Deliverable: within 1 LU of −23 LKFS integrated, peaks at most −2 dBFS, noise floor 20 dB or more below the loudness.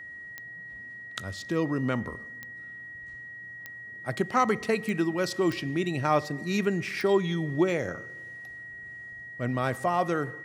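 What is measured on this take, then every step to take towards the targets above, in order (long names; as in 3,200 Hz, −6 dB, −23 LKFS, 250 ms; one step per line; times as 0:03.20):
number of clicks 6; interfering tone 1,900 Hz; level of the tone −40 dBFS; integrated loudness −28.5 LKFS; sample peak −11.0 dBFS; target loudness −23.0 LKFS
→ click removal
notch filter 1,900 Hz, Q 30
level +5.5 dB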